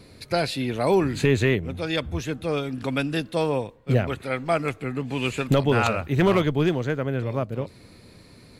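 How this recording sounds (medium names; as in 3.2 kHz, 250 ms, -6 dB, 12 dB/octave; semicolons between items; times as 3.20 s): noise floor -50 dBFS; spectral tilt -5.5 dB/octave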